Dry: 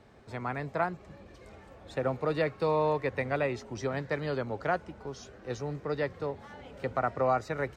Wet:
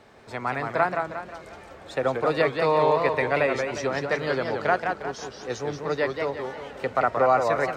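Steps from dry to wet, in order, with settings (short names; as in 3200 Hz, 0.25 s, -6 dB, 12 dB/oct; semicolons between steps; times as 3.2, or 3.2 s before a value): low shelf 250 Hz -11.5 dB; warbling echo 0.178 s, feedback 45%, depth 199 cents, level -5 dB; gain +8 dB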